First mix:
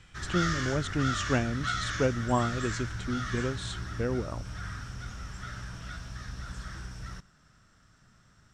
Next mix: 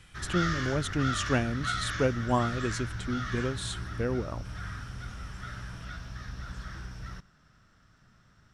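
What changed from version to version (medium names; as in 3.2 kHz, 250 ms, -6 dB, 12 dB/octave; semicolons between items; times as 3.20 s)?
speech: remove distance through air 120 m; master: add peaking EQ 7.8 kHz -8.5 dB 0.75 oct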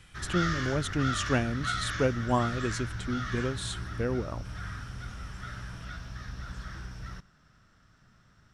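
no change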